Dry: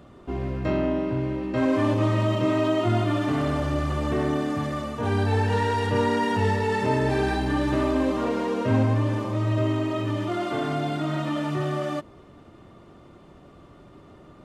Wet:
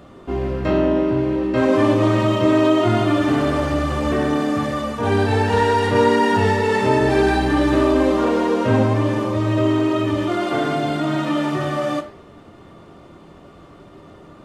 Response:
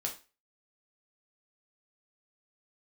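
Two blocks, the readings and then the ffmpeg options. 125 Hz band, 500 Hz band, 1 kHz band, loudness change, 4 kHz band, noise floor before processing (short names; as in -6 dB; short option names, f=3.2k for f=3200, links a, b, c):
+2.5 dB, +7.5 dB, +7.0 dB, +6.5 dB, +7.0 dB, -50 dBFS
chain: -filter_complex "[0:a]flanger=delay=3.1:depth=9.4:regen=-90:speed=1.3:shape=sinusoidal,asplit=2[a][b];[1:a]atrim=start_sample=2205,lowshelf=f=140:g=-9[c];[b][c]afir=irnorm=-1:irlink=0,volume=0.5dB[d];[a][d]amix=inputs=2:normalize=0,volume=5dB"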